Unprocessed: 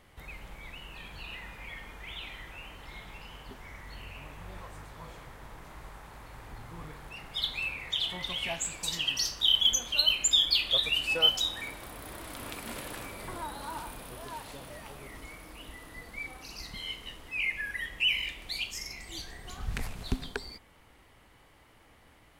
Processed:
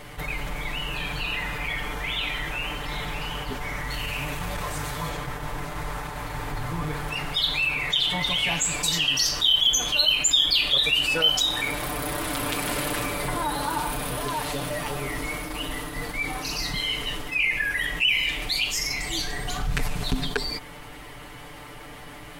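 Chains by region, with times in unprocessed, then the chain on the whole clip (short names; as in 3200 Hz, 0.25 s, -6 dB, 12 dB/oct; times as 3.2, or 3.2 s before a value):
3.9–5.09 high shelf 3000 Hz +7.5 dB + core saturation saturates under 120 Hz
whole clip: gate -47 dBFS, range -9 dB; comb 6.8 ms, depth 86%; fast leveller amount 50%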